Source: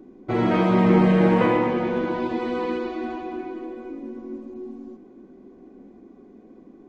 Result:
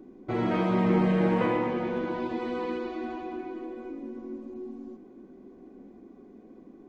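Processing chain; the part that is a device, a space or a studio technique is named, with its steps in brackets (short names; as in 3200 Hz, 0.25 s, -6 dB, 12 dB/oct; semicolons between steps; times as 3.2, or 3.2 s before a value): parallel compression (in parallel at -2 dB: compressor, threshold -34 dBFS, peak gain reduction 19.5 dB); on the sum: gain -7.5 dB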